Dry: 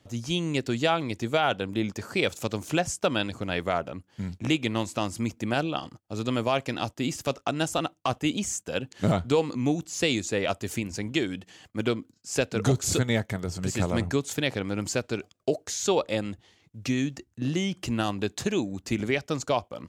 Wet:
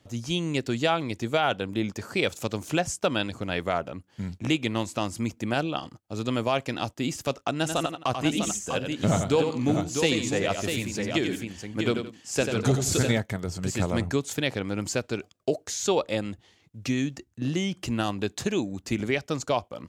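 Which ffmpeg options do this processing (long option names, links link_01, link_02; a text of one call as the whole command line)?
ffmpeg -i in.wav -filter_complex "[0:a]asettb=1/sr,asplit=3[link_01][link_02][link_03];[link_01]atrim=end=7.564[link_04];[link_02]atrim=start=7.56:end=13.18,asetpts=PTS-STARTPTS,afade=type=in:duration=0.004:curve=qsin,afade=type=out:start_time=5.616:duration=0.004:curve=qsin,aecho=1:1:90|171|649:0.447|0.126|0.501,atrim=end_sample=247842[link_05];[link_03]atrim=start=13.176[link_06];[link_04][link_05]acrossfade=duration=0.004:curve1=hsin:curve2=qsin[link_07];[link_07][link_06]acrossfade=duration=0.004:curve1=qsin:curve2=hsin" out.wav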